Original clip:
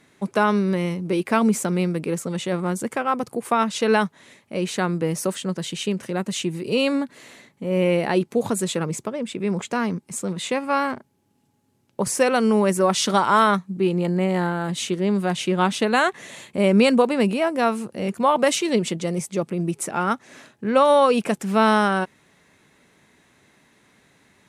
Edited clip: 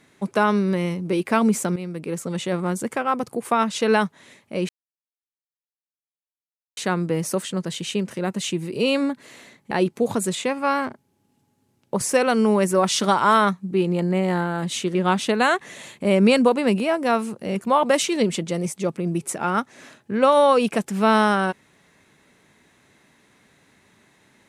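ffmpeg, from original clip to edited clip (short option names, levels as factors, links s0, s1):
-filter_complex "[0:a]asplit=6[s0][s1][s2][s3][s4][s5];[s0]atrim=end=1.76,asetpts=PTS-STARTPTS,afade=t=out:st=1.756:d=0.004:c=hsin:silence=0.237137[s6];[s1]atrim=start=1.76:end=4.69,asetpts=PTS-STARTPTS,afade=t=in:d=0.58:silence=0.237137,afade=t=out:st=2.926:d=0.004:c=hsin,apad=pad_dur=2.08[s7];[s2]atrim=start=4.69:end=7.632,asetpts=PTS-STARTPTS,afade=t=in:d=0.004:c=hsin[s8];[s3]atrim=start=8.058:end=8.702[s9];[s4]atrim=start=10.408:end=15.012[s10];[s5]atrim=start=15.478[s11];[s6][s7][s8]concat=n=3:v=0:a=1[s12];[s12][s9]acrossfade=d=0.004:c1=hsin:c2=hsin[s13];[s13][s10]acrossfade=d=0.004:c1=hsin:c2=hsin[s14];[s14][s11]acrossfade=d=0.004:c1=hsin:c2=hsin"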